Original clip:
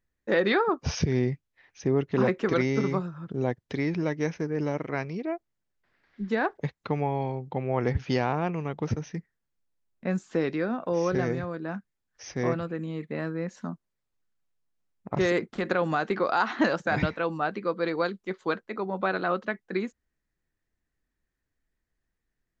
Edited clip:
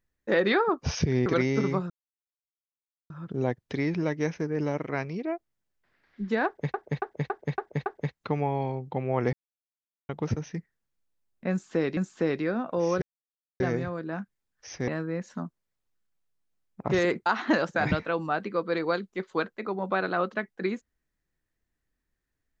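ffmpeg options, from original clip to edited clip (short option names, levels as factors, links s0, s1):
-filter_complex "[0:a]asplit=14[s0][s1][s2][s3][s4][s5][s6][s7][s8][s9][s10][s11][s12][s13];[s0]atrim=end=1.262[s14];[s1]atrim=start=2.458:end=3.1,asetpts=PTS-STARTPTS,afade=t=out:st=0.638:d=0.004:c=hsin,apad=pad_dur=1.2[s15];[s2]atrim=start=3.1:end=6.742,asetpts=PTS-STARTPTS,afade=t=in:d=0.004:c=hsin[s16];[s3]atrim=start=6.458:end=6.742[s17];[s4]atrim=start=6.458:end=6.742[s18];[s5]atrim=start=6.458:end=6.742[s19];[s6]atrim=start=6.458:end=6.742[s20];[s7]atrim=start=6.458:end=7.93,asetpts=PTS-STARTPTS,afade=t=out:st=1.468:d=0.004:c=hsin[s21];[s8]atrim=start=7.93:end=8.69,asetpts=PTS-STARTPTS,volume=0[s22];[s9]atrim=start=8.69:end=10.572,asetpts=PTS-STARTPTS,afade=t=in:d=0.004:c=hsin[s23];[s10]atrim=start=10.108:end=11.16,asetpts=PTS-STARTPTS,afade=t=out:st=1.048:d=0.004:c=hsin,apad=pad_dur=0.58[s24];[s11]atrim=start=11.16:end=12.442,asetpts=PTS-STARTPTS,afade=t=in:d=0.004:c=hsin[s25];[s12]atrim=start=13.148:end=15.532[s26];[s13]atrim=start=16.368[s27];[s15][s16]concat=n=2:v=0:a=1[s28];[s14][s28]acrossfade=d=0.004:c1=hsin:c2=hsin[s29];[s29][s17]acrossfade=d=0.004:c1=hsin:c2=hsin[s30];[s30][s18]acrossfade=d=0.004:c1=hsin:c2=hsin[s31];[s31][s19]acrossfade=d=0.004:c1=hsin:c2=hsin[s32];[s32][s20]acrossfade=d=0.004:c1=hsin:c2=hsin[s33];[s21][s22][s23]concat=n=3:v=0:a=1[s34];[s33][s34]acrossfade=d=0.004:c1=hsin:c2=hsin[s35];[s24][s25]concat=n=2:v=0:a=1[s36];[s35][s36]acrossfade=d=0.004:c1=hsin:c2=hsin[s37];[s37][s26]acrossfade=d=0.004:c1=hsin:c2=hsin[s38];[s38][s27]acrossfade=d=0.004:c1=hsin:c2=hsin"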